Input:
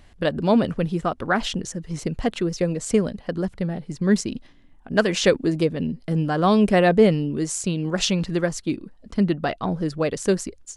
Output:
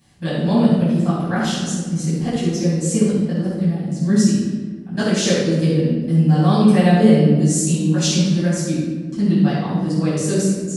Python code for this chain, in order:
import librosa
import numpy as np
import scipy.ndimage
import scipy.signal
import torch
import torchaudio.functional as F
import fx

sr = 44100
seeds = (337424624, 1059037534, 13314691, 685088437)

p1 = scipy.signal.sosfilt(scipy.signal.butter(2, 180.0, 'highpass', fs=sr, output='sos'), x)
p2 = fx.bass_treble(p1, sr, bass_db=14, treble_db=14)
p3 = p2 + fx.echo_bbd(p2, sr, ms=72, stages=1024, feedback_pct=76, wet_db=-16, dry=0)
p4 = fx.room_shoebox(p3, sr, seeds[0], volume_m3=860.0, walls='mixed', distance_m=8.7)
y = F.gain(torch.from_numpy(p4), -17.0).numpy()